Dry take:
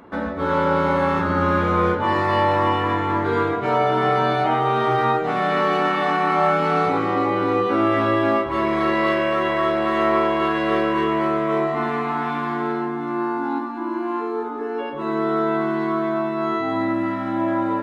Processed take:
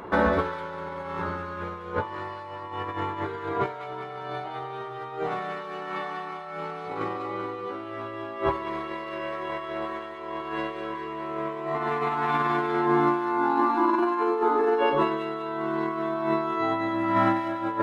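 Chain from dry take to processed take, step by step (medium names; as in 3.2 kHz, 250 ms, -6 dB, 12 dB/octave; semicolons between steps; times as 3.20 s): graphic EQ with 31 bands 250 Hz -11 dB, 400 Hz +4 dB, 1 kHz +4 dB; compressor with a negative ratio -26 dBFS, ratio -0.5; on a send: feedback echo behind a high-pass 197 ms, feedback 52%, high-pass 2.2 kHz, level -4.5 dB; on the sum: trim -1 dB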